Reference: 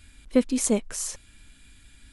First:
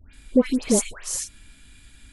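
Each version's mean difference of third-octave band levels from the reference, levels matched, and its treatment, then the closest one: 3.5 dB: phase dispersion highs, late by 137 ms, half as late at 1.7 kHz; trim +3 dB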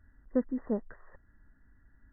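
7.0 dB: brick-wall FIR low-pass 2 kHz; trim -8 dB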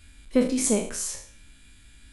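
2.5 dB: spectral sustain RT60 0.50 s; trim -1.5 dB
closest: third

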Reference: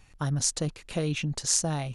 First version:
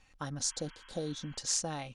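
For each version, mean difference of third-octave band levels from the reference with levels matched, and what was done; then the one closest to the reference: 3.5 dB: low-pass 7.3 kHz 12 dB/octave; spectral replace 0.46–1.35 s, 890–3300 Hz before; bass shelf 320 Hz -6.5 dB; comb 3.8 ms, depth 36%; trim -4.5 dB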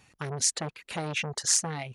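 5.5 dB: high-pass 120 Hz 12 dB/octave; reverb removal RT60 0.68 s; dynamic bell 1.8 kHz, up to +7 dB, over -52 dBFS, Q 1.6; transformer saturation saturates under 4 kHz; trim +1.5 dB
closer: first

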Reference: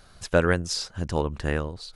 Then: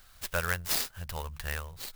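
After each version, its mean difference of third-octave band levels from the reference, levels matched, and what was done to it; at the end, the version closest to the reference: 11.5 dB: amplifier tone stack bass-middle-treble 10-0-10; hum notches 50/100/150 Hz; sampling jitter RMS 0.045 ms; trim +2 dB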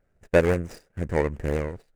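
7.0 dB: median filter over 41 samples; gate -41 dBFS, range -15 dB; ten-band graphic EQ 500 Hz +6 dB, 2 kHz +10 dB, 4 kHz -6 dB, 8 kHz +8 dB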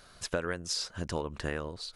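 4.5 dB: bass shelf 190 Hz -9 dB; band-stop 800 Hz, Q 12; compression 6:1, threshold -29 dBFS, peak gain reduction 12.5 dB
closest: third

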